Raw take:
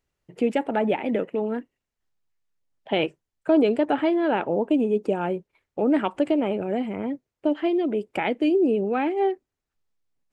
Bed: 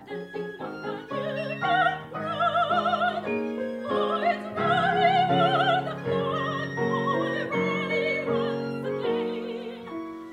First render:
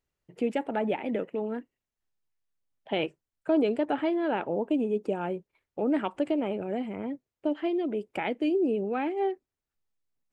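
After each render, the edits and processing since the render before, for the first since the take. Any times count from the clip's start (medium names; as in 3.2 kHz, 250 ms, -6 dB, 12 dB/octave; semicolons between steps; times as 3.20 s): trim -5.5 dB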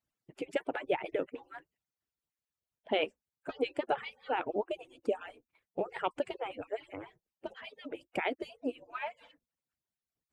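harmonic-percussive separation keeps percussive; peaking EQ 64 Hz +4.5 dB 0.33 oct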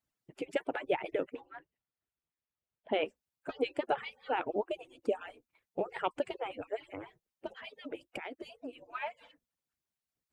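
1.41–3.06 s: distance through air 230 m; 8.17–8.73 s: compression, threshold -38 dBFS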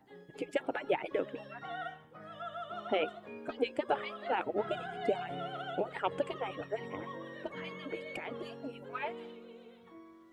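add bed -18.5 dB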